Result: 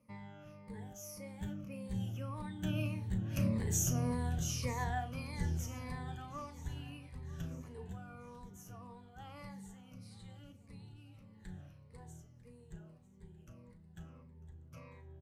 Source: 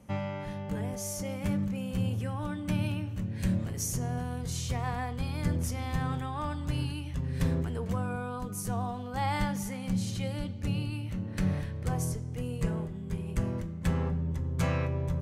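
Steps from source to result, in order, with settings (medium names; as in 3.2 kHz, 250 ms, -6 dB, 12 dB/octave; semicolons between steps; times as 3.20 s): drifting ripple filter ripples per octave 0.93, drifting -1.7 Hz, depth 15 dB; Doppler pass-by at 3.91 s, 7 m/s, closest 4.8 m; doubling 36 ms -12 dB; on a send: feedback delay 947 ms, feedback 55%, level -19.5 dB; on the sum: trim -3 dB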